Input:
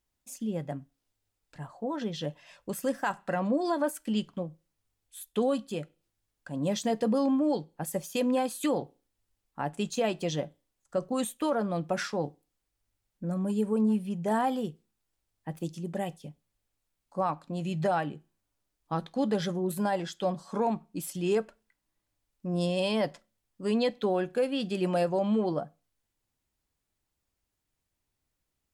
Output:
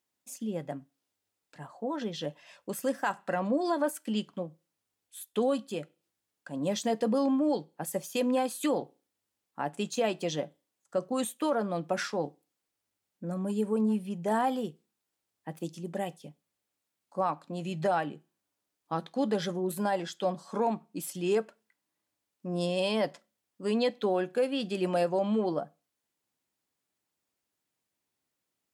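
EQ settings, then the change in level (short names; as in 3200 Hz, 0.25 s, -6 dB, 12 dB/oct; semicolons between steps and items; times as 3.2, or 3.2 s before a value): HPF 190 Hz 12 dB/oct; 0.0 dB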